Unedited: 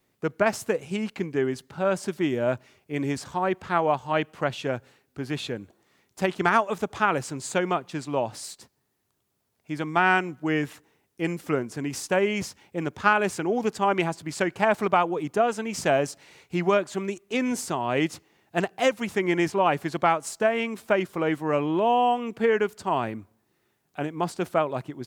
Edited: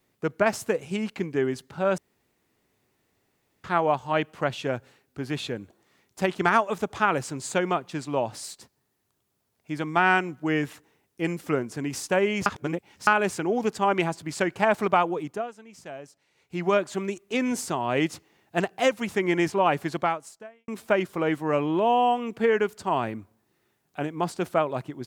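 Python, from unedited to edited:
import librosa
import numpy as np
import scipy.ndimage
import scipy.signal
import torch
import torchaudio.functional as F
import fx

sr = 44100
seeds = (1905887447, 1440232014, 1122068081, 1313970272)

y = fx.edit(x, sr, fx.room_tone_fill(start_s=1.98, length_s=1.66),
    fx.reverse_span(start_s=12.46, length_s=0.61),
    fx.fade_down_up(start_s=15.1, length_s=1.67, db=-17.5, fade_s=0.42),
    fx.fade_out_span(start_s=19.93, length_s=0.75, curve='qua'), tone=tone)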